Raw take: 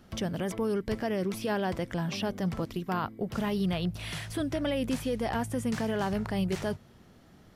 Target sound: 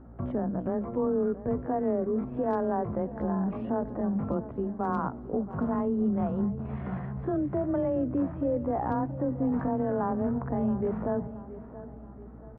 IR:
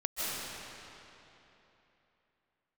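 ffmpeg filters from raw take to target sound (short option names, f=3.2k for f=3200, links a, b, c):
-filter_complex "[0:a]lowpass=f=1.2k:w=0.5412,lowpass=f=1.2k:w=1.3066,bandreject=f=92.67:t=h:w=4,bandreject=f=185.34:t=h:w=4,asplit=2[a][b];[b]alimiter=level_in=5.5dB:limit=-24dB:level=0:latency=1:release=168,volume=-5.5dB,volume=0dB[c];[a][c]amix=inputs=2:normalize=0,afreqshift=27,aeval=exprs='val(0)+0.00447*(sin(2*PI*60*n/s)+sin(2*PI*2*60*n/s)/2+sin(2*PI*3*60*n/s)/3+sin(2*PI*4*60*n/s)/4+sin(2*PI*5*60*n/s)/5)':c=same,asoftclip=type=hard:threshold=-16.5dB,atempo=0.6,aecho=1:1:677|1354|2031|2708:0.178|0.08|0.036|0.0162,asplit=2[d][e];[1:a]atrim=start_sample=2205,adelay=85[f];[e][f]afir=irnorm=-1:irlink=0,volume=-31dB[g];[d][g]amix=inputs=2:normalize=0,volume=-1dB"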